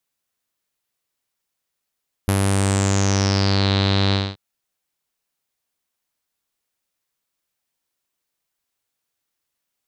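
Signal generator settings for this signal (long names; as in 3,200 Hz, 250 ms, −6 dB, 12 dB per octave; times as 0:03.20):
subtractive voice saw G2 12 dB per octave, low-pass 4,000 Hz, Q 7.4, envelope 1.5 octaves, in 1.41 s, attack 1.1 ms, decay 0.05 s, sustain −2 dB, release 0.23 s, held 1.85 s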